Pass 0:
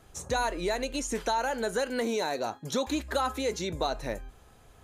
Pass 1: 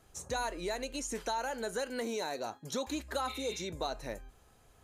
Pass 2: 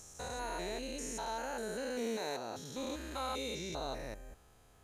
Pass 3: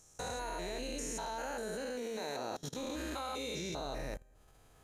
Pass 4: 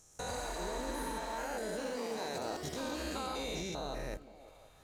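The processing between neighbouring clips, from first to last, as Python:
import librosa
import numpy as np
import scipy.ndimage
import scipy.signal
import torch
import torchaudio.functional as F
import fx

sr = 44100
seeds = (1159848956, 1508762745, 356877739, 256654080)

y1 = fx.notch(x, sr, hz=3500.0, q=29.0)
y1 = fx.spec_repair(y1, sr, seeds[0], start_s=3.3, length_s=0.31, low_hz=1500.0, high_hz=4600.0, source='after')
y1 = fx.bass_treble(y1, sr, bass_db=-1, treble_db=3)
y1 = y1 * 10.0 ** (-6.5 / 20.0)
y2 = fx.spec_steps(y1, sr, hold_ms=200)
y2 = y2 * 10.0 ** (1.0 / 20.0)
y3 = fx.room_shoebox(y2, sr, seeds[1], volume_m3=740.0, walls='furnished', distance_m=0.56)
y3 = fx.level_steps(y3, sr, step_db=23)
y3 = y3 * 10.0 ** (6.5 / 20.0)
y4 = fx.echo_pitch(y3, sr, ms=123, semitones=3, count=2, db_per_echo=-6.0)
y4 = fx.echo_stepped(y4, sr, ms=175, hz=240.0, octaves=0.7, feedback_pct=70, wet_db=-10.0)
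y4 = fx.spec_repair(y4, sr, seeds[2], start_s=0.35, length_s=0.96, low_hz=760.0, high_hz=8900.0, source='both')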